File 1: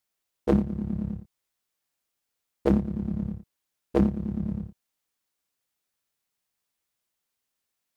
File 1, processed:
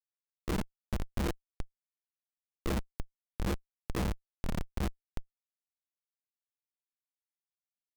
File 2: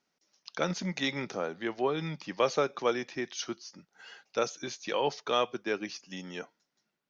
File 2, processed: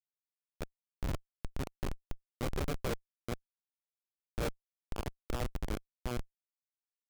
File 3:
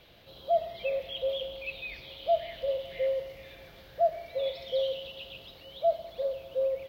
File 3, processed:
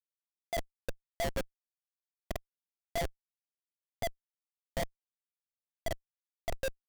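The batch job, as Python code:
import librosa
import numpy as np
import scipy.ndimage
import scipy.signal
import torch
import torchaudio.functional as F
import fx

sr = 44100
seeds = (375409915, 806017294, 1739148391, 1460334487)

y = fx.reverse_delay(x, sr, ms=442, wet_db=0)
y = fx.chorus_voices(y, sr, voices=2, hz=0.55, base_ms=29, depth_ms=3.4, mix_pct=40)
y = fx.schmitt(y, sr, flips_db=-23.0)
y = F.gain(torch.from_numpy(y), 1.0).numpy()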